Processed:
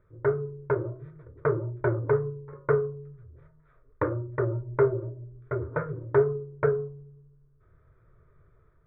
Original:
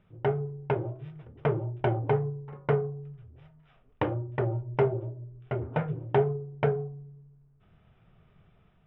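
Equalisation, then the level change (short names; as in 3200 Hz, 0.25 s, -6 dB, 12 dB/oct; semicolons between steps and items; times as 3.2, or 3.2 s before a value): dynamic EQ 1300 Hz, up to +5 dB, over -50 dBFS, Q 2.1; air absorption 400 m; fixed phaser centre 770 Hz, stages 6; +4.5 dB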